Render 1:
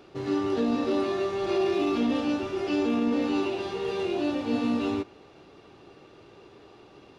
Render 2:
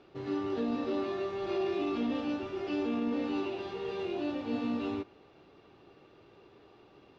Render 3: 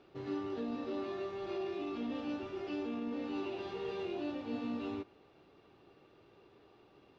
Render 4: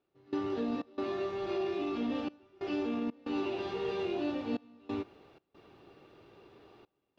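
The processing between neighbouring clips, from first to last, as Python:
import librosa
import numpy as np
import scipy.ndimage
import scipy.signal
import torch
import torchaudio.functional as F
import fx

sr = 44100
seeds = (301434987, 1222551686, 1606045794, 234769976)

y1 = scipy.signal.sosfilt(scipy.signal.butter(2, 4600.0, 'lowpass', fs=sr, output='sos'), x)
y1 = y1 * 10.0 ** (-6.5 / 20.0)
y2 = fx.rider(y1, sr, range_db=10, speed_s=0.5)
y2 = y2 * 10.0 ** (-5.5 / 20.0)
y3 = fx.step_gate(y2, sr, bpm=92, pattern='..xxx.xxxxxxxx', floor_db=-24.0, edge_ms=4.5)
y3 = y3 * 10.0 ** (5.0 / 20.0)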